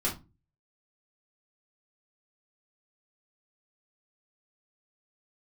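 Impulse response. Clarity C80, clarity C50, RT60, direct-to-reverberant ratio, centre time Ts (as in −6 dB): 19.0 dB, 10.5 dB, 0.25 s, −6.0 dB, 26 ms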